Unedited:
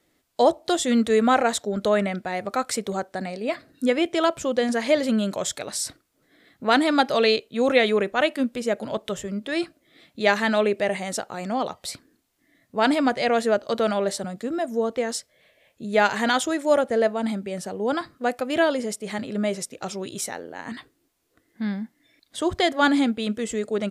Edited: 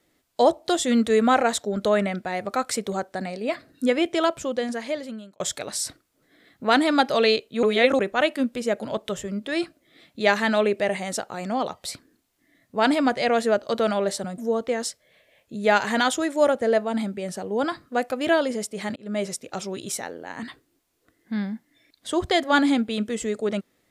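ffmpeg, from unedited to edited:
-filter_complex "[0:a]asplit=6[s0][s1][s2][s3][s4][s5];[s0]atrim=end=5.4,asetpts=PTS-STARTPTS,afade=t=out:st=4.15:d=1.25[s6];[s1]atrim=start=5.4:end=7.632,asetpts=PTS-STARTPTS,afade=t=in:d=0.004:c=hsin[s7];[s2]atrim=start=7.628:end=7.992,asetpts=PTS-STARTPTS,areverse[s8];[s3]atrim=start=7.988:end=14.382[s9];[s4]atrim=start=14.668:end=19.25,asetpts=PTS-STARTPTS,afade=t=out:st=4.578:d=0.004:c=hsin[s10];[s5]atrim=start=19.25,asetpts=PTS-STARTPTS,afade=t=in:d=0.27[s11];[s6][s7]concat=n=2:v=0:a=1[s12];[s12][s8]acrossfade=d=0.004:c1=hsin:c2=hsin[s13];[s13][s9]acrossfade=d=0.004:c1=hsin:c2=hsin[s14];[s10][s11]concat=n=2:v=0:a=1[s15];[s14][s15]acrossfade=d=0.004:c1=hsin:c2=hsin"

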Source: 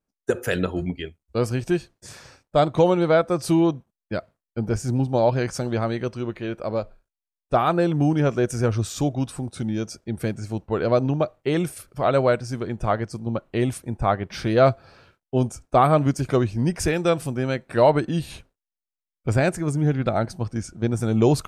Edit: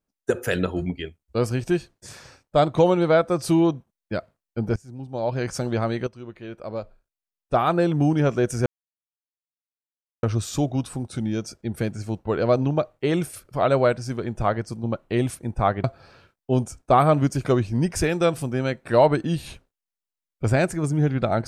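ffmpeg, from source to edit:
-filter_complex "[0:a]asplit=5[s0][s1][s2][s3][s4];[s0]atrim=end=4.76,asetpts=PTS-STARTPTS,afade=t=out:st=4.756:d=0.004:c=hsin:silence=0.112202[s5];[s1]atrim=start=4.76:end=6.07,asetpts=PTS-STARTPTS,afade=t=in:d=0.77:c=qua:silence=0.112202,afade=t=out:st=1.306:d=0.004:c=hsin:silence=0.237137[s6];[s2]atrim=start=6.07:end=8.66,asetpts=PTS-STARTPTS,afade=t=in:d=1.72:silence=0.237137,afade=t=out:st=2.586:d=0.004:c=hsin,apad=pad_dur=1.57[s7];[s3]atrim=start=8.66:end=14.272,asetpts=PTS-STARTPTS,afade=t=in:d=0.004:c=hsin[s8];[s4]atrim=start=14.678[s9];[s5][s6][s7][s8]concat=n=4:v=0:a=1[s10];[s10][s9]acrossfade=d=0.004:c1=hsin:c2=hsin"

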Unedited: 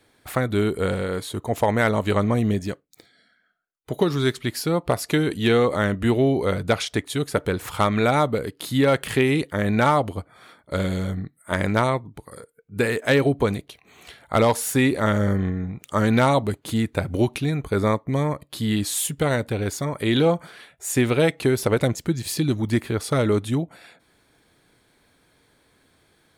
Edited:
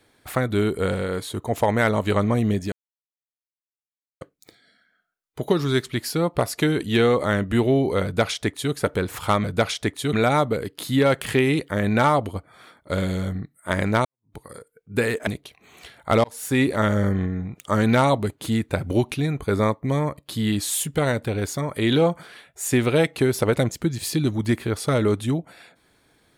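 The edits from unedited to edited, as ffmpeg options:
-filter_complex "[0:a]asplit=7[s0][s1][s2][s3][s4][s5][s6];[s0]atrim=end=2.72,asetpts=PTS-STARTPTS,afade=t=out:st=2.716:d=0.004:c=hsin,apad=pad_dur=1.49[s7];[s1]atrim=start=2.72:end=7.952,asetpts=PTS-STARTPTS,afade=t=in:d=0.004:c=hsin[s8];[s2]atrim=start=6.548:end=7.242[s9];[s3]atrim=start=7.948:end=11.87,asetpts=PTS-STARTPTS,afade=t=out:st=3.918:d=0.004:c=hsin[s10];[s4]atrim=start=11.87:end=13.092,asetpts=PTS-STARTPTS,afade=t=in:d=0.29:c=exp[s11];[s5]atrim=start=13.508:end=14.48,asetpts=PTS-STARTPTS,afade=t=out:st=0.968:d=0.004:c=hsin[s12];[s6]atrim=start=14.48,asetpts=PTS-STARTPTS,afade=t=in:d=0.38[s13];[s7][s8]concat=n=2:v=0:a=1[s14];[s14][s9]acrossfade=d=0.004:c1=hsin:c2=hsin[s15];[s10][s11]concat=n=2:v=0:a=1[s16];[s15][s16]acrossfade=d=0.004:c1=hsin:c2=hsin[s17];[s12][s13]concat=n=2:v=0:a=1[s18];[s17][s18]acrossfade=d=0.004:c1=hsin:c2=hsin"

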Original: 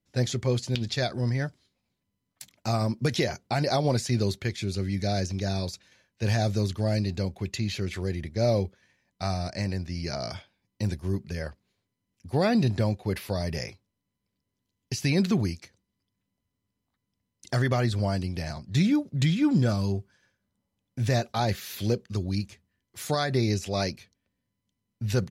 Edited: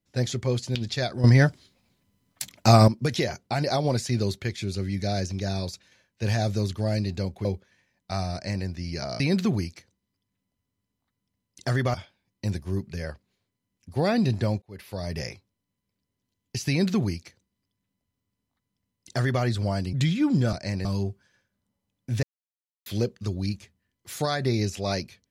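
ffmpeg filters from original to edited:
-filter_complex "[0:a]asplit=12[s0][s1][s2][s3][s4][s5][s6][s7][s8][s9][s10][s11];[s0]atrim=end=1.242[s12];[s1]atrim=start=1.238:end=2.882,asetpts=PTS-STARTPTS,volume=3.55[s13];[s2]atrim=start=2.878:end=7.452[s14];[s3]atrim=start=8.558:end=10.312[s15];[s4]atrim=start=15.058:end=17.802[s16];[s5]atrim=start=10.308:end=12.99,asetpts=PTS-STARTPTS,afade=t=out:st=2.678:d=0.004:c=hsin[s17];[s6]atrim=start=12.99:end=18.302,asetpts=PTS-STARTPTS,afade=t=in:d=0.57[s18];[s7]atrim=start=19.138:end=19.742[s19];[s8]atrim=start=9.448:end=9.772[s20];[s9]atrim=start=19.738:end=21.12,asetpts=PTS-STARTPTS,afade=t=out:st=1.378:d=0.004:c=hsin[s21];[s10]atrim=start=21.12:end=21.75,asetpts=PTS-STARTPTS,volume=0[s22];[s11]atrim=start=21.75,asetpts=PTS-STARTPTS,afade=t=in:d=0.004:c=hsin[s23];[s12][s13]acrossfade=d=0.004:c1=hsin:c2=hsin[s24];[s24][s14]acrossfade=d=0.004:c1=hsin:c2=hsin[s25];[s25][s15]acrossfade=d=0.004:c1=hsin:c2=hsin[s26];[s26][s16]acrossfade=d=0.004:c1=hsin:c2=hsin[s27];[s17][s18]concat=n=2:v=0:a=1[s28];[s27][s28]acrossfade=d=0.004:c1=hsin:c2=hsin[s29];[s29][s19]acrossfade=d=0.004:c1=hsin:c2=hsin[s30];[s30][s20]acrossfade=d=0.004:c1=hsin:c2=hsin[s31];[s21][s22][s23]concat=n=3:v=0:a=1[s32];[s31][s32]acrossfade=d=0.004:c1=hsin:c2=hsin"

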